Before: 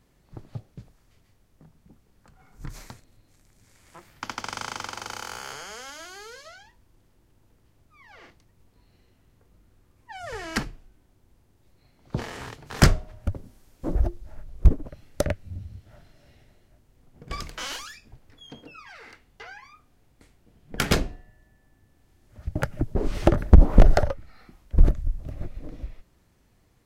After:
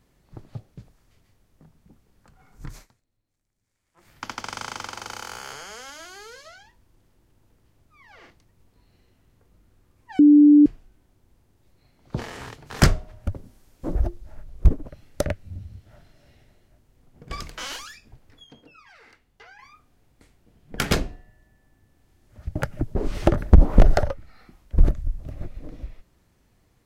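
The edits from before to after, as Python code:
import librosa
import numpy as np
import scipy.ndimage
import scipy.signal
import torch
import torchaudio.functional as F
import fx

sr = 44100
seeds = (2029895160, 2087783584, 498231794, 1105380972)

y = fx.edit(x, sr, fx.fade_down_up(start_s=2.74, length_s=1.35, db=-20.0, fade_s=0.13),
    fx.bleep(start_s=10.19, length_s=0.47, hz=294.0, db=-8.5),
    fx.clip_gain(start_s=18.44, length_s=1.15, db=-6.0), tone=tone)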